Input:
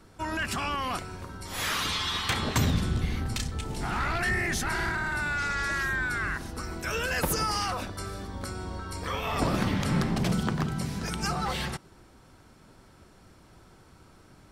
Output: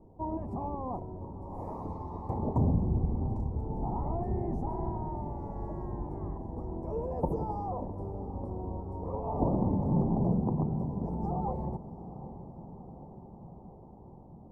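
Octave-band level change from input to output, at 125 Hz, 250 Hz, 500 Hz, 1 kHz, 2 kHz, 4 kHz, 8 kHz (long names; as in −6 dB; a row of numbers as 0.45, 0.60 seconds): −0.5 dB, 0.0 dB, 0.0 dB, −5.0 dB, below −40 dB, below −40 dB, below −40 dB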